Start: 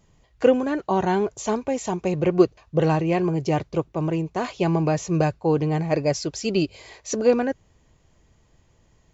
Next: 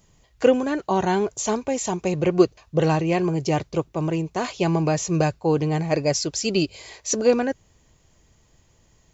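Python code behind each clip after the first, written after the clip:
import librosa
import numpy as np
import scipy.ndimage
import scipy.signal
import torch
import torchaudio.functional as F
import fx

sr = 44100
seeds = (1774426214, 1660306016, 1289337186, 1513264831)

y = fx.high_shelf(x, sr, hz=4200.0, db=9.5)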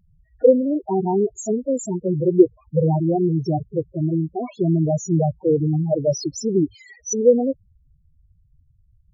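y = fx.spec_topn(x, sr, count=4)
y = y * 10.0 ** (4.5 / 20.0)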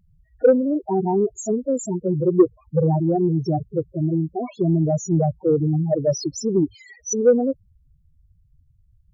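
y = 10.0 ** (-4.0 / 20.0) * np.tanh(x / 10.0 ** (-4.0 / 20.0))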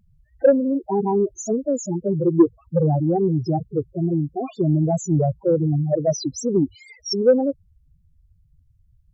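y = fx.wow_flutter(x, sr, seeds[0], rate_hz=2.1, depth_cents=140.0)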